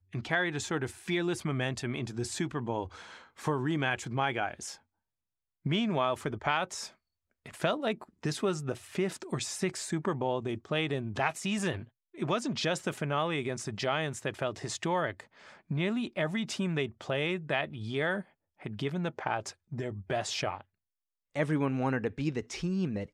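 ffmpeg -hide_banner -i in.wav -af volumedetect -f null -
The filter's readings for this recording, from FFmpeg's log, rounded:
mean_volume: -33.2 dB
max_volume: -12.8 dB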